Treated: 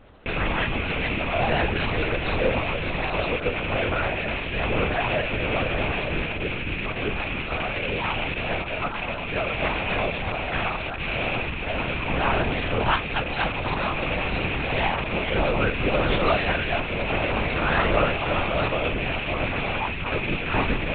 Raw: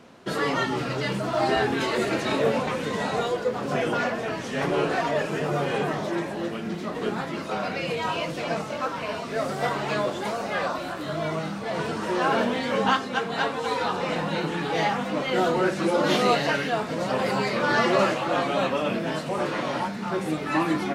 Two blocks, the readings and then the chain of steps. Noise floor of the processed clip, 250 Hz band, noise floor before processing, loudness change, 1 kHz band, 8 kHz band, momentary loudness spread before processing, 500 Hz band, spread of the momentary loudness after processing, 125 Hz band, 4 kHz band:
−30 dBFS, −2.0 dB, −33 dBFS, +1.0 dB, −1.0 dB, below −40 dB, 7 LU, −1.5 dB, 5 LU, +4.5 dB, +2.0 dB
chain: loose part that buzzes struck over −39 dBFS, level −16 dBFS
linear-prediction vocoder at 8 kHz whisper

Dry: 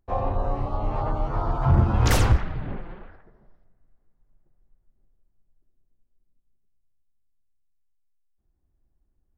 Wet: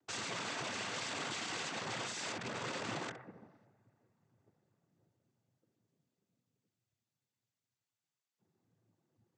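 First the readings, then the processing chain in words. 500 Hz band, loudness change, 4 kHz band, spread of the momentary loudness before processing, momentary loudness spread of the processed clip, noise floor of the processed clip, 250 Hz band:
−14.0 dB, −15.0 dB, −2.0 dB, 15 LU, 4 LU, below −85 dBFS, −15.5 dB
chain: downward compressor 16 to 1, threshold −30 dBFS, peak gain reduction 17.5 dB
wrap-around overflow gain 39 dB
cochlear-implant simulation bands 16
level +4.5 dB

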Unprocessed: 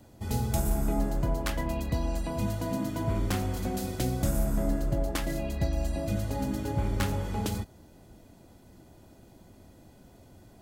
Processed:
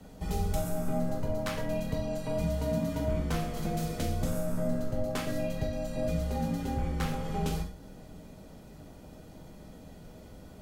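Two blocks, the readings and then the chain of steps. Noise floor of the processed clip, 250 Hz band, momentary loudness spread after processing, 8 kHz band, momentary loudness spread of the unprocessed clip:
−50 dBFS, −1.5 dB, 19 LU, −4.5 dB, 4 LU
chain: high-shelf EQ 6,400 Hz −5.5 dB
downward compressor 2 to 1, threshold −38 dBFS, peak gain reduction 9 dB
frequency shifter −35 Hz
reverb whose tail is shaped and stops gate 170 ms falling, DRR 0 dB
level +3 dB

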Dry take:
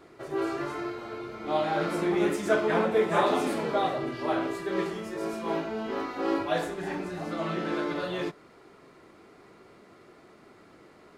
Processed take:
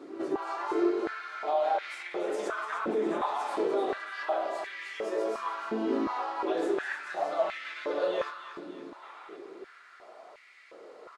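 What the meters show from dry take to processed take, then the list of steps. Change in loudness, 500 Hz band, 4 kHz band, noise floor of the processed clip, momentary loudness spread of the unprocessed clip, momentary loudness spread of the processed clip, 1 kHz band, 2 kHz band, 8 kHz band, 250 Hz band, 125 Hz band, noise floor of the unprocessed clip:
−2.5 dB, −2.0 dB, −4.5 dB, −54 dBFS, 10 LU, 18 LU, −1.0 dB, −2.0 dB, −6.0 dB, −4.0 dB, below −15 dB, −55 dBFS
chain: low-pass filter 8,700 Hz 12 dB per octave
parametric band 2,100 Hz −2.5 dB
echo ahead of the sound 236 ms −20.5 dB
brickwall limiter −22 dBFS, peak gain reduction 10.5 dB
downward compressor, threshold −32 dBFS, peak gain reduction 6.5 dB
flanger 0.68 Hz, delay 6.6 ms, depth 9.6 ms, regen −57%
gain on a spectral selection 0:09.03–0:09.36, 1,100–4,000 Hz +8 dB
on a send: repeating echo 297 ms, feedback 53%, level −10 dB
on the sum: high-pass on a step sequencer 2.8 Hz 280–2,100 Hz
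level +4.5 dB

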